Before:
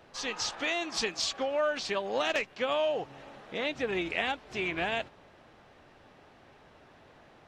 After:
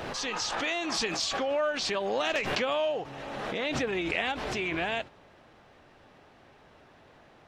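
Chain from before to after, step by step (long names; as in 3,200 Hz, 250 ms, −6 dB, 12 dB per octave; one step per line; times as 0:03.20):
background raised ahead of every attack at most 23 dB per second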